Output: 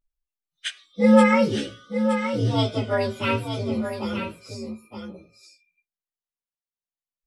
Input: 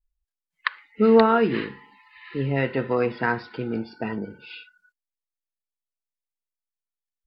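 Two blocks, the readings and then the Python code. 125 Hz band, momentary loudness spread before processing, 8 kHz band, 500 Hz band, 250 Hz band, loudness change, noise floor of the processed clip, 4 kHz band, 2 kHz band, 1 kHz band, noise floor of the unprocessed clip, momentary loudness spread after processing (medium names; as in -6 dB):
+4.0 dB, 19 LU, no reading, -0.5 dB, +3.5 dB, +1.0 dB, under -85 dBFS, +6.5 dB, 0.0 dB, -0.5 dB, under -85 dBFS, 20 LU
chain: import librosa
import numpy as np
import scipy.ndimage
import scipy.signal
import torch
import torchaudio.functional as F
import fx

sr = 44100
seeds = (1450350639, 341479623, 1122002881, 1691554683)

y = fx.partial_stretch(x, sr, pct=127)
y = fx.doubler(y, sr, ms=18.0, db=-6.0)
y = y + 10.0 ** (-8.0 / 20.0) * np.pad(y, (int(919 * sr / 1000.0), 0))[:len(y)]
y = F.gain(torch.from_numpy(y), 1.5).numpy()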